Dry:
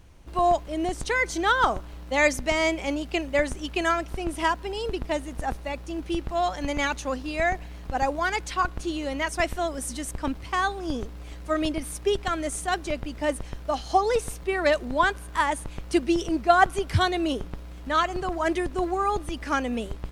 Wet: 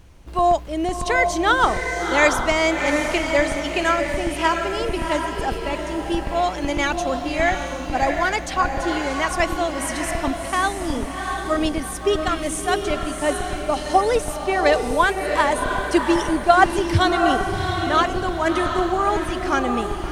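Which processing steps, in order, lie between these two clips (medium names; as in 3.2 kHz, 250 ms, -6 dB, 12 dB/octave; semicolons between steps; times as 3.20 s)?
on a send: echo that smears into a reverb 706 ms, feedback 43%, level -4.5 dB; on the sum: trim +4 dB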